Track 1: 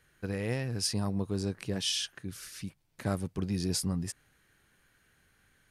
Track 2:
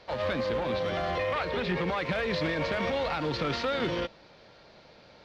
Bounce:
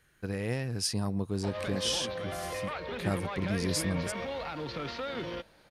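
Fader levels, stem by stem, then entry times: 0.0, −7.0 decibels; 0.00, 1.35 seconds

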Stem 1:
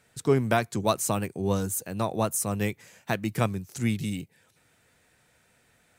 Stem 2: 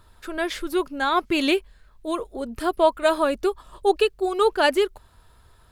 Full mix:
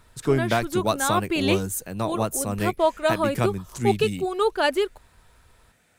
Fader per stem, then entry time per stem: +1.0, −2.5 decibels; 0.00, 0.00 seconds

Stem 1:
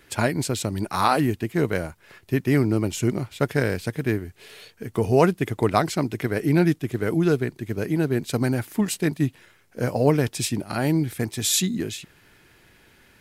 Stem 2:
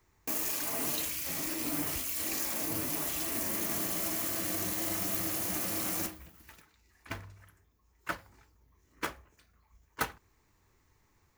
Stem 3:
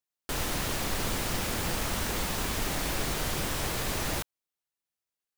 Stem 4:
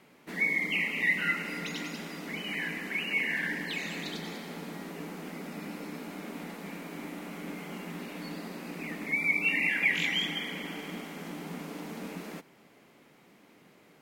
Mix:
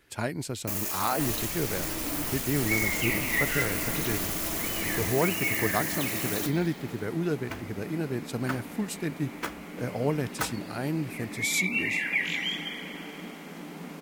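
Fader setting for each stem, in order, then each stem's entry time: −8.5, +1.0, −7.5, −1.0 decibels; 0.00, 0.40, 0.90, 2.30 seconds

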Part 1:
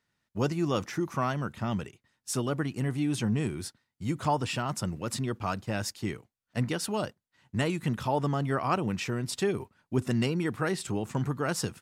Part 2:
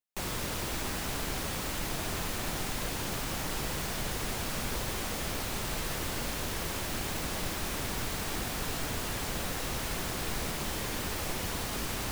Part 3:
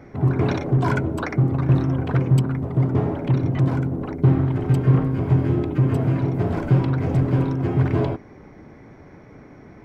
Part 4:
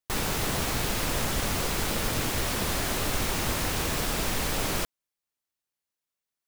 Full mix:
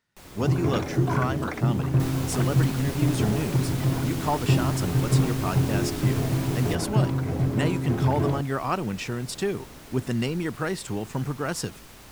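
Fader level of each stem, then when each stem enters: +1.0, −12.5, −5.0, −8.5 decibels; 0.00, 0.00, 0.25, 1.90 seconds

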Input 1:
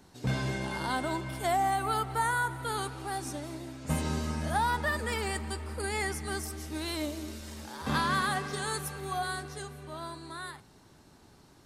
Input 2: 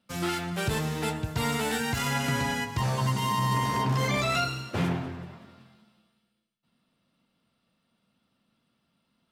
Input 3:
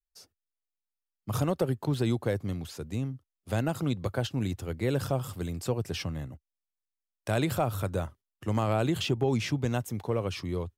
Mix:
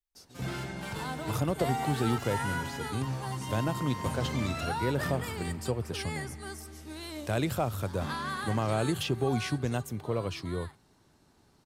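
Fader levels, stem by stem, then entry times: −6.5, −11.0, −2.0 decibels; 0.15, 0.25, 0.00 seconds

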